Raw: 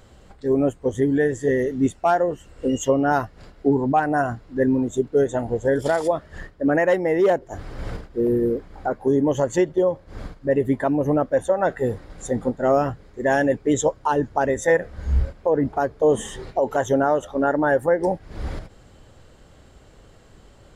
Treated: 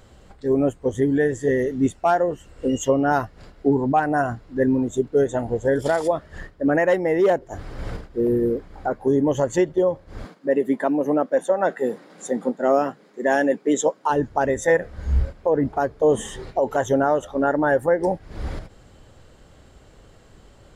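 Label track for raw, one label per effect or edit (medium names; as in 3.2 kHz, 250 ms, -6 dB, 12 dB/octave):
10.250000	14.100000	steep high-pass 180 Hz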